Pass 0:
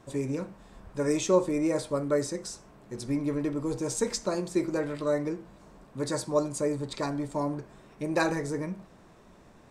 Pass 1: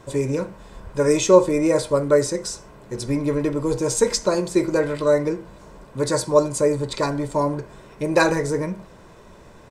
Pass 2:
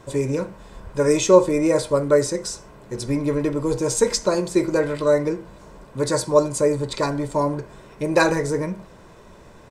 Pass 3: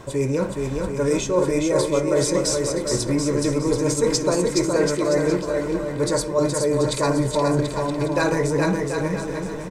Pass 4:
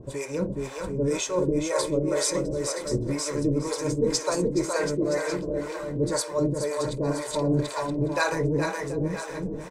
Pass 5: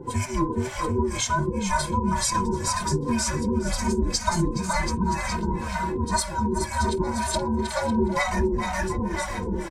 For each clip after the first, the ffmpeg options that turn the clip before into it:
-af "aecho=1:1:2:0.35,volume=8.5dB"
-af anull
-af "areverse,acompressor=threshold=-26dB:ratio=6,areverse,aecho=1:1:420|735|971.2|1148|1281:0.631|0.398|0.251|0.158|0.1,volume=7dB"
-filter_complex "[0:a]acrossover=split=530[a][b];[a]aeval=exprs='val(0)*(1-1/2+1/2*cos(2*PI*2*n/s))':c=same[c];[b]aeval=exprs='val(0)*(1-1/2-1/2*cos(2*PI*2*n/s))':c=same[d];[c][d]amix=inputs=2:normalize=0"
-filter_complex "[0:a]afftfilt=real='real(if(between(b,1,1008),(2*floor((b-1)/24)+1)*24-b,b),0)':imag='imag(if(between(b,1,1008),(2*floor((b-1)/24)+1)*24-b,b),0)*if(between(b,1,1008),-1,1)':win_size=2048:overlap=0.75,acompressor=threshold=-26dB:ratio=12,asplit=2[a][b];[b]adelay=3,afreqshift=-2.7[c];[a][c]amix=inputs=2:normalize=1,volume=9dB"

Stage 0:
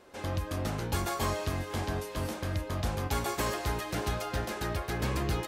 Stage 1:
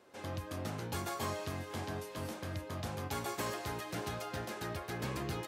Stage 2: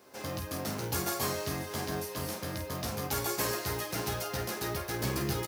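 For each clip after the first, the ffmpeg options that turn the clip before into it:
-af "highpass=f=88:w=0.5412,highpass=f=88:w=1.3066,volume=-6dB"
-filter_complex "[0:a]aecho=1:1:15|49:0.596|0.422,asplit=2[a][b];[b]acrusher=bits=3:mode=log:mix=0:aa=0.000001,volume=-6.5dB[c];[a][c]amix=inputs=2:normalize=0,aexciter=amount=2:drive=4.7:freq=4.6k"

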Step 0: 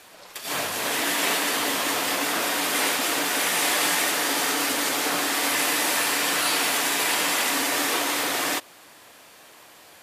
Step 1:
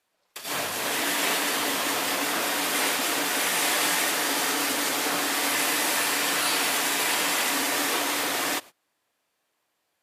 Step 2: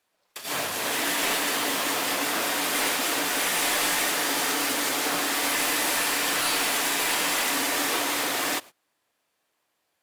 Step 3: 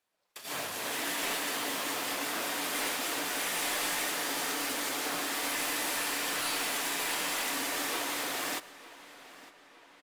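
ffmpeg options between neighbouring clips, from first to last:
-af "agate=range=-25dB:threshold=-38dB:ratio=16:detection=peak,volume=-1.5dB"
-af "aeval=exprs='clip(val(0),-1,0.112)':c=same,acrusher=bits=3:mode=log:mix=0:aa=0.000001"
-filter_complex "[0:a]asplit=2[a][b];[b]adelay=908,lowpass=f=4.9k:p=1,volume=-17dB,asplit=2[c][d];[d]adelay=908,lowpass=f=4.9k:p=1,volume=0.53,asplit=2[e][f];[f]adelay=908,lowpass=f=4.9k:p=1,volume=0.53,asplit=2[g][h];[h]adelay=908,lowpass=f=4.9k:p=1,volume=0.53,asplit=2[i][j];[j]adelay=908,lowpass=f=4.9k:p=1,volume=0.53[k];[a][c][e][g][i][k]amix=inputs=6:normalize=0,volume=-7.5dB"

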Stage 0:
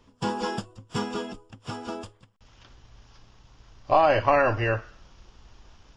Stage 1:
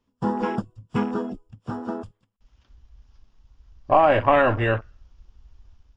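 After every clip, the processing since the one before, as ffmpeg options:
-af "afwtdn=0.0178,equalizer=f=230:w=2.2:g=5.5,dynaudnorm=f=100:g=5:m=3dB"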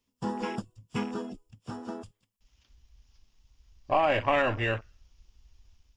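-af "aexciter=amount=2:drive=7.9:freq=2k,volume=-8dB"

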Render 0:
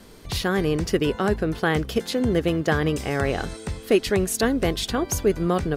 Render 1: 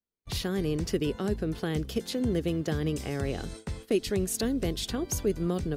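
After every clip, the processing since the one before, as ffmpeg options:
-filter_complex "[0:a]agate=range=-44dB:threshold=-36dB:ratio=16:detection=peak,acrossover=split=470|3000[a][b][c];[b]acompressor=threshold=-37dB:ratio=4[d];[a][d][c]amix=inputs=3:normalize=0,volume=-5dB"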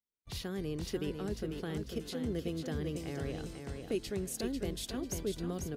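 -af "aecho=1:1:495|990|1485|1980:0.501|0.17|0.0579|0.0197,volume=-8.5dB"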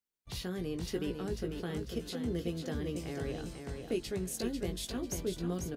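-filter_complex "[0:a]asplit=2[a][b];[b]adelay=17,volume=-7dB[c];[a][c]amix=inputs=2:normalize=0"

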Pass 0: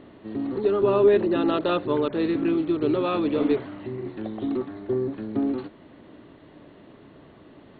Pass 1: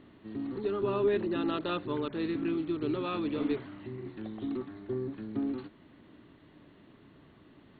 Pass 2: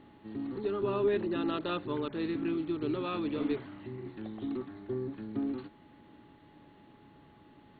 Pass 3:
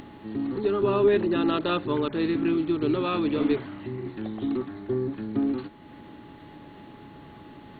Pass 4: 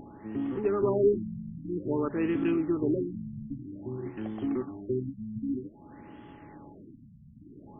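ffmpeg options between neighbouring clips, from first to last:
-af "equalizer=f=580:t=o:w=1.3:g=-7.5,volume=-5.5dB"
-af "aeval=exprs='val(0)+0.000794*sin(2*PI*840*n/s)':c=same,volume=-1dB"
-af "acompressor=mode=upward:threshold=-47dB:ratio=2.5,volume=8dB"
-af "afftfilt=real='re*lt(b*sr/1024,220*pow(3500/220,0.5+0.5*sin(2*PI*0.52*pts/sr)))':imag='im*lt(b*sr/1024,220*pow(3500/220,0.5+0.5*sin(2*PI*0.52*pts/sr)))':win_size=1024:overlap=0.75,volume=-2.5dB"

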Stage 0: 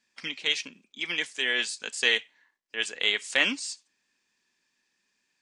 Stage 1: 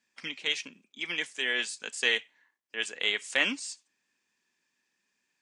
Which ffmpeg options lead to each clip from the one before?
-af "highpass=72,equalizer=f=4.4k:t=o:w=0.72:g=-4,volume=-2dB"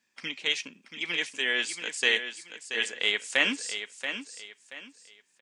-af "aecho=1:1:680|1360|2040:0.355|0.106|0.0319,volume=2dB"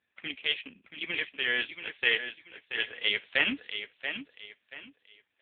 -af "lowshelf=f=68:g=8" -ar 8000 -c:a libopencore_amrnb -b:a 6700

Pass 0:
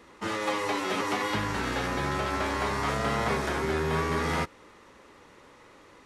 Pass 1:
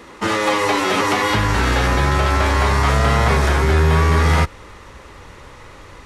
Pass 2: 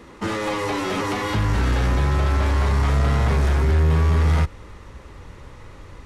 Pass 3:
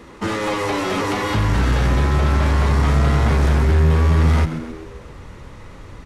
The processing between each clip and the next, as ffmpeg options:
-filter_complex "[0:a]asubboost=boost=6.5:cutoff=100,asplit=2[a][b];[b]alimiter=limit=-22dB:level=0:latency=1,volume=1.5dB[c];[a][c]amix=inputs=2:normalize=0,volume=6dB"
-af "asoftclip=type=tanh:threshold=-13.5dB,lowshelf=f=330:g=9.5,volume=-7dB"
-filter_complex "[0:a]asplit=6[a][b][c][d][e][f];[b]adelay=132,afreqshift=81,volume=-12dB[g];[c]adelay=264,afreqshift=162,volume=-17.7dB[h];[d]adelay=396,afreqshift=243,volume=-23.4dB[i];[e]adelay=528,afreqshift=324,volume=-29dB[j];[f]adelay=660,afreqshift=405,volume=-34.7dB[k];[a][g][h][i][j][k]amix=inputs=6:normalize=0,volume=2.5dB"

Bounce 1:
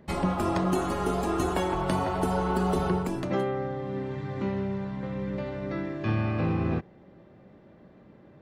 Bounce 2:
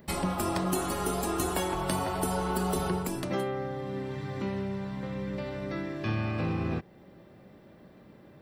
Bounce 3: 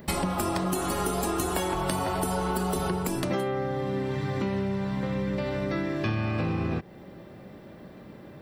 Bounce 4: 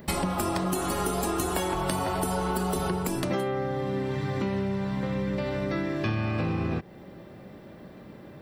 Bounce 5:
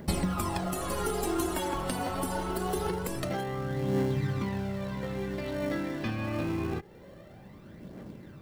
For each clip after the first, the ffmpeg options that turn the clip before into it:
-filter_complex "[0:a]bandreject=f=6.6k:w=11,asplit=2[a][b];[b]acompressor=threshold=-35dB:ratio=6,volume=-2dB[c];[a][c]amix=inputs=2:normalize=0,aemphasis=mode=production:type=75kf,volume=-5.5dB"
-af "acompressor=threshold=-32dB:ratio=6,volume=7.5dB"
-af anull
-filter_complex "[0:a]aphaser=in_gain=1:out_gain=1:delay=4.1:decay=0.54:speed=0.25:type=triangular,asplit=2[a][b];[b]acrusher=samples=36:mix=1:aa=0.000001,volume=-11dB[c];[a][c]amix=inputs=2:normalize=0,volume=-5.5dB"

